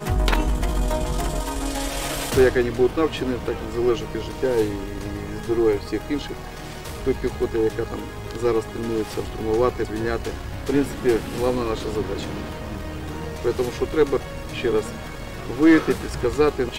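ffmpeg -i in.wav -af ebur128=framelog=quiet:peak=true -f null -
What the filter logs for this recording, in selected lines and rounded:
Integrated loudness:
  I:         -23.8 LUFS
  Threshold: -34.0 LUFS
Loudness range:
  LRA:         3.5 LU
  Threshold: -44.4 LUFS
  LRA low:   -26.0 LUFS
  LRA high:  -22.5 LUFS
True peak:
  Peak:       -6.6 dBFS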